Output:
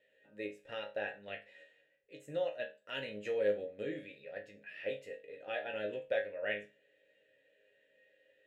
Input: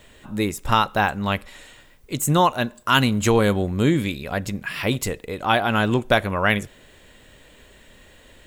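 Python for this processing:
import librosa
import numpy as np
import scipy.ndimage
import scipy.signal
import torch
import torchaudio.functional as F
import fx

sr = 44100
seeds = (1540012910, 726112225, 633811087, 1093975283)

p1 = fx.level_steps(x, sr, step_db=22)
p2 = x + (p1 * librosa.db_to_amplitude(1.5))
p3 = fx.vowel_filter(p2, sr, vowel='e')
p4 = fx.resonator_bank(p3, sr, root=44, chord='sus4', decay_s=0.28)
y = p4 * librosa.db_to_amplitude(2.0)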